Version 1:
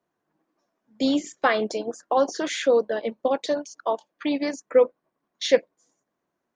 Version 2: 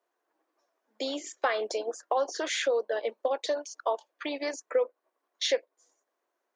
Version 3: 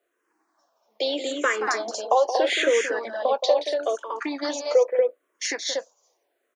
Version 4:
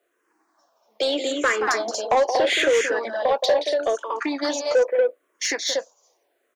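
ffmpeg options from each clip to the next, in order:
-af "acompressor=threshold=-25dB:ratio=3,highpass=f=380:w=0.5412,highpass=f=380:w=1.3066"
-filter_complex "[0:a]aecho=1:1:174.9|236.2:0.316|0.631,asplit=2[a][b];[b]afreqshift=-0.78[c];[a][c]amix=inputs=2:normalize=1,volume=8.5dB"
-af "asoftclip=type=tanh:threshold=-16.5dB,volume=4dB"

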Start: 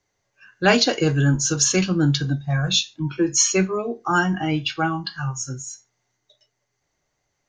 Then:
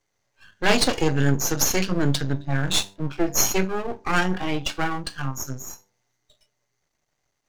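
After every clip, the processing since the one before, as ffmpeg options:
-af "aeval=exprs='max(val(0),0)':c=same,bandreject=f=98.17:t=h:w=4,bandreject=f=196.34:t=h:w=4,bandreject=f=294.51:t=h:w=4,bandreject=f=392.68:t=h:w=4,bandreject=f=490.85:t=h:w=4,bandreject=f=589.02:t=h:w=4,bandreject=f=687.19:t=h:w=4,bandreject=f=785.36:t=h:w=4,bandreject=f=883.53:t=h:w=4,bandreject=f=981.7:t=h:w=4,volume=2dB"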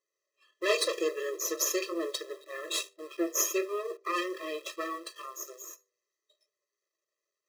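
-filter_complex "[0:a]asplit=2[a][b];[b]acrusher=bits=5:mix=0:aa=0.000001,volume=-5dB[c];[a][c]amix=inputs=2:normalize=0,afftfilt=real='re*eq(mod(floor(b*sr/1024/340),2),1)':imag='im*eq(mod(floor(b*sr/1024/340),2),1)':win_size=1024:overlap=0.75,volume=-8dB"

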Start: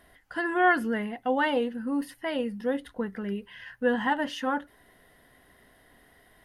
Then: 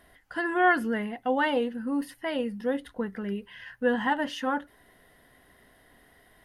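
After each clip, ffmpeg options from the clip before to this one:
-af anull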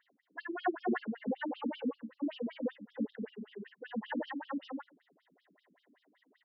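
-af "lowshelf=f=380:g=8,aecho=1:1:230.3|282.8:0.562|0.447,afftfilt=real='re*between(b*sr/1024,230*pow(4200/230,0.5+0.5*sin(2*PI*5.2*pts/sr))/1.41,230*pow(4200/230,0.5+0.5*sin(2*PI*5.2*pts/sr))*1.41)':imag='im*between(b*sr/1024,230*pow(4200/230,0.5+0.5*sin(2*PI*5.2*pts/sr))/1.41,230*pow(4200/230,0.5+0.5*sin(2*PI*5.2*pts/sr))*1.41)':win_size=1024:overlap=0.75,volume=-7dB"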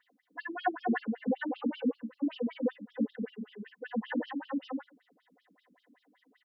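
-af "aecho=1:1:4:0.83"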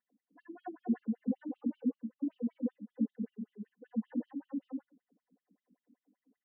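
-af "bandpass=f=210:t=q:w=1.9:csg=0"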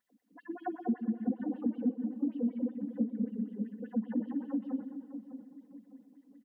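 -filter_complex "[0:a]asplit=2[a][b];[b]aecho=0:1:122|244|366|488|610:0.251|0.113|0.0509|0.0229|0.0103[c];[a][c]amix=inputs=2:normalize=0,acompressor=threshold=-37dB:ratio=3,asplit=2[d][e];[e]adelay=603,lowpass=f=890:p=1,volume=-10dB,asplit=2[f][g];[g]adelay=603,lowpass=f=890:p=1,volume=0.42,asplit=2[h][i];[i]adelay=603,lowpass=f=890:p=1,volume=0.42,asplit=2[j][k];[k]adelay=603,lowpass=f=890:p=1,volume=0.42[l];[f][h][j][l]amix=inputs=4:normalize=0[m];[d][m]amix=inputs=2:normalize=0,volume=7.5dB"

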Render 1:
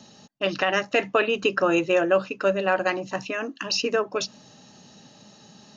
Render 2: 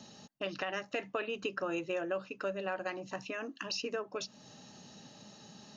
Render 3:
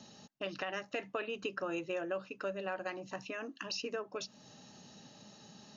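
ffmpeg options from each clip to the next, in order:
-af "acompressor=threshold=-38dB:ratio=2,volume=-3.5dB"
-af "aresample=16000,aresample=44100,volume=-2dB"

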